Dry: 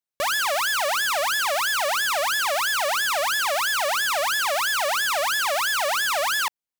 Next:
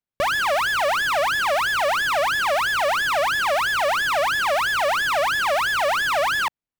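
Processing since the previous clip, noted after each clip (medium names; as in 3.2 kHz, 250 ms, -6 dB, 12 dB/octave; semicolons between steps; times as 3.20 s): tone controls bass +3 dB, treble -10 dB; in parallel at -9 dB: bit crusher 6-bit; on the sum: bass shelf 310 Hz +7.5 dB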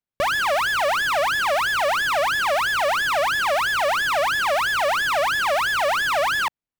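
no audible change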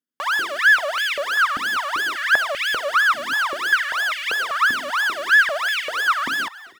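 comb filter that takes the minimum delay 0.62 ms; frequency-shifting echo 240 ms, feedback 50%, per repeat +59 Hz, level -20.5 dB; step-sequenced high-pass 5.1 Hz 260–2300 Hz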